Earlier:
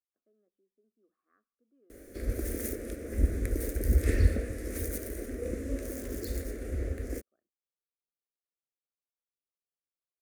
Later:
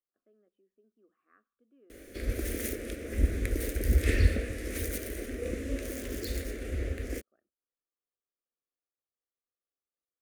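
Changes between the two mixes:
speech +5.0 dB; master: add bell 3000 Hz +11.5 dB 1.2 oct

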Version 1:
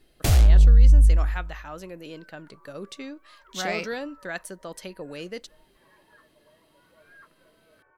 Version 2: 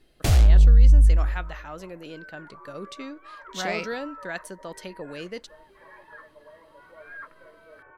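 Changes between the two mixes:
second sound +11.5 dB; master: add high shelf 9900 Hz -7 dB

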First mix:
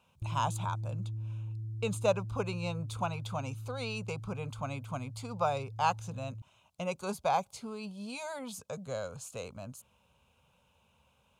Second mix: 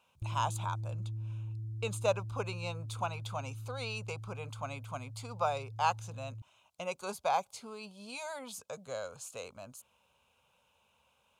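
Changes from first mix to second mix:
speech: add low shelf 260 Hz -11 dB; master: add bell 170 Hz -3 dB 0.93 oct

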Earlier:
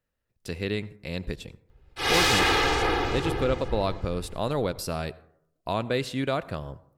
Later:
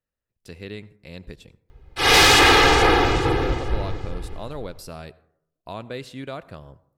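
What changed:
speech -6.5 dB; background +8.5 dB

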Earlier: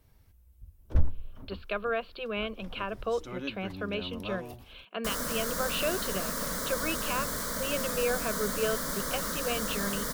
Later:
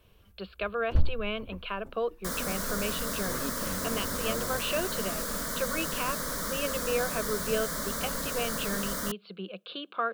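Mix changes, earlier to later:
speech: entry -1.10 s; second sound: entry -2.80 s

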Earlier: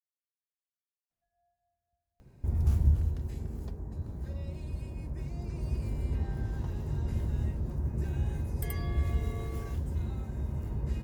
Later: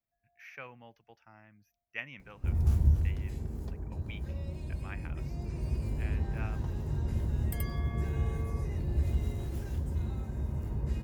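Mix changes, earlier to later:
speech: unmuted; second sound: entry -1.10 s

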